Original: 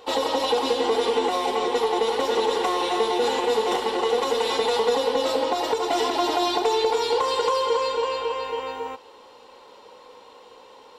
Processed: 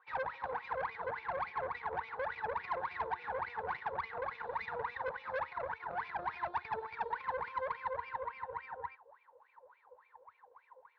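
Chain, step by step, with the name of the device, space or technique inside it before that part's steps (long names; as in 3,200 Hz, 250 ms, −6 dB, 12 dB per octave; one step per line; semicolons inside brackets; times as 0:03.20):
wah-wah guitar rig (LFO wah 3.5 Hz 510–2,400 Hz, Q 20; tube saturation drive 38 dB, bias 0.75; loudspeaker in its box 79–3,900 Hz, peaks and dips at 80 Hz +5 dB, 270 Hz −8 dB, 630 Hz −4 dB, 950 Hz +6 dB, 1,600 Hz +7 dB, 3,000 Hz −9 dB)
level +4.5 dB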